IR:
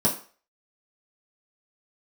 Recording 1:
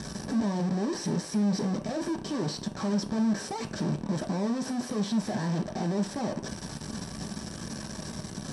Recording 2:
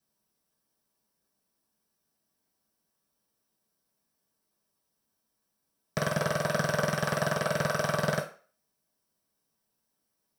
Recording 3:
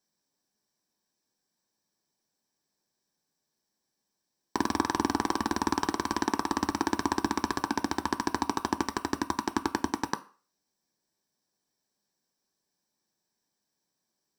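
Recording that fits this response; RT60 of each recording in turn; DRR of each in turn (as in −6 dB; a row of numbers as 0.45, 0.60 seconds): 2; 0.40, 0.40, 0.40 seconds; 2.5, −5.5, 8.0 decibels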